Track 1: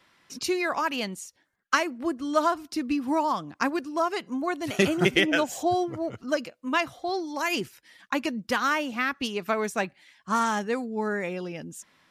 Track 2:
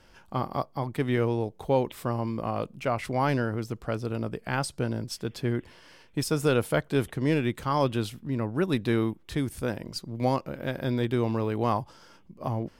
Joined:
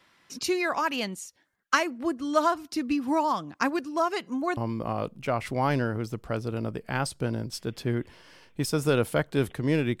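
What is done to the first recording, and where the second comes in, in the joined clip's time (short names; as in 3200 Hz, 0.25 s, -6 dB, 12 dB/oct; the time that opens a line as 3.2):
track 1
4.57 switch to track 2 from 2.15 s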